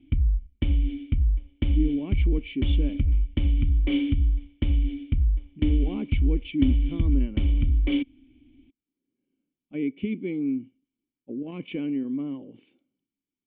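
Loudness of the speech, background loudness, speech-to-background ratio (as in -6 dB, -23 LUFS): -31.0 LUFS, -26.0 LUFS, -5.0 dB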